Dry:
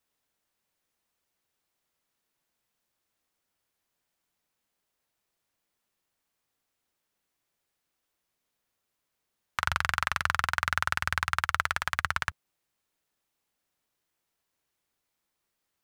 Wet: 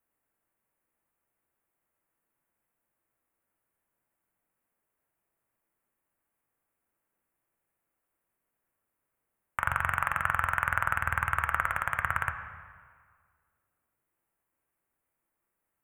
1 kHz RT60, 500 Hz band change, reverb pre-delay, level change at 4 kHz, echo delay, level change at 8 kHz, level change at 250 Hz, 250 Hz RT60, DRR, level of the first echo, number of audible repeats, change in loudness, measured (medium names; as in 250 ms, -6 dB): 1.8 s, +1.0 dB, 3 ms, -14.0 dB, no echo, -7.5 dB, +0.5 dB, 1.8 s, 6.0 dB, no echo, no echo, 0.0 dB